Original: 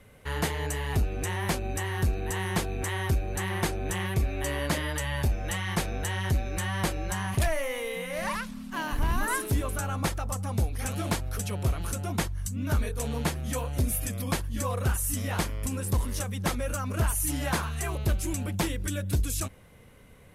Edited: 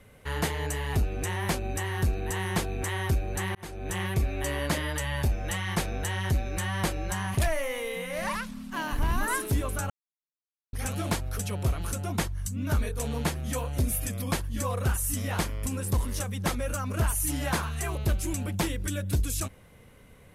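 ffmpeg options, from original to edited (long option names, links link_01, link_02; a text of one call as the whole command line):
ffmpeg -i in.wav -filter_complex "[0:a]asplit=4[link_01][link_02][link_03][link_04];[link_01]atrim=end=3.55,asetpts=PTS-STARTPTS,afade=type=out:start_time=3.546:duration=0.004:curve=hsin[link_05];[link_02]atrim=start=3.55:end=9.9,asetpts=PTS-STARTPTS,afade=type=in:duration=0.44,afade=type=out:start_time=6.346:duration=0.004:curve=hsin[link_06];[link_03]atrim=start=9.9:end=10.73,asetpts=PTS-STARTPTS,volume=0[link_07];[link_04]atrim=start=10.73,asetpts=PTS-STARTPTS,afade=type=in:duration=0.004:curve=hsin[link_08];[link_05][link_06][link_07][link_08]concat=n=4:v=0:a=1" out.wav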